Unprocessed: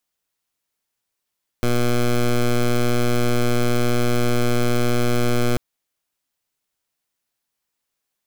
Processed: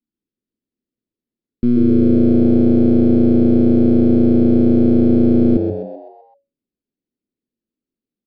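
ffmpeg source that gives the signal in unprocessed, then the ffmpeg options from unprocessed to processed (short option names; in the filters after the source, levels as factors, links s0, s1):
-f lavfi -i "aevalsrc='0.133*(2*lt(mod(121*t,1),0.13)-1)':d=3.94:s=44100"
-filter_complex "[0:a]firequalizer=gain_entry='entry(130,0);entry(240,14);entry(610,-21);entry(1700,-19)':delay=0.05:min_phase=1,asplit=7[s0][s1][s2][s3][s4][s5][s6];[s1]adelay=128,afreqshift=93,volume=0.473[s7];[s2]adelay=256,afreqshift=186,volume=0.226[s8];[s3]adelay=384,afreqshift=279,volume=0.108[s9];[s4]adelay=512,afreqshift=372,volume=0.0525[s10];[s5]adelay=640,afreqshift=465,volume=0.0251[s11];[s6]adelay=768,afreqshift=558,volume=0.012[s12];[s0][s7][s8][s9][s10][s11][s12]amix=inputs=7:normalize=0,aresample=11025,aresample=44100"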